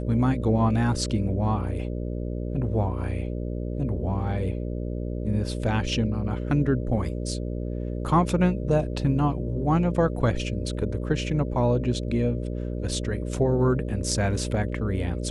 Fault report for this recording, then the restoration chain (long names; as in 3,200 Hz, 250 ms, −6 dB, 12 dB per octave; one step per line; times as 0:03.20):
mains buzz 60 Hz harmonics 10 −30 dBFS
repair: hum removal 60 Hz, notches 10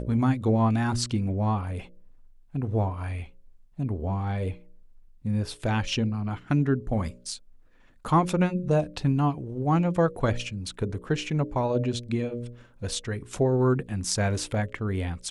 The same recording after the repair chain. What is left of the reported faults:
none of them is left